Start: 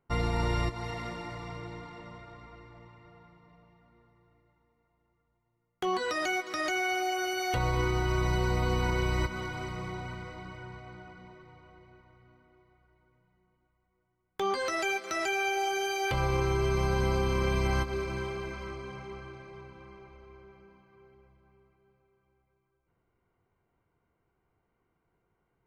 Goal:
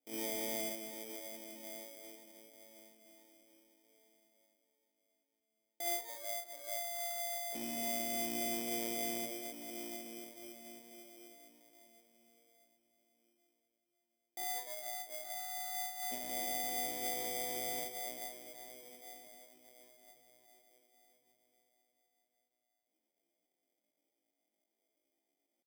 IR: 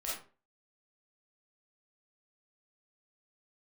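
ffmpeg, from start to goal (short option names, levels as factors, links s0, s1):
-filter_complex "[0:a]asuperpass=centerf=220:order=8:qfactor=0.89[s0];[1:a]atrim=start_sample=2205,asetrate=66150,aresample=44100[s1];[s0][s1]afir=irnorm=-1:irlink=0,asetrate=83250,aresample=44100,atempo=0.529732,acrusher=samples=16:mix=1:aa=0.000001,aemphasis=mode=production:type=75kf,acrusher=bits=4:mode=log:mix=0:aa=0.000001,volume=0.841"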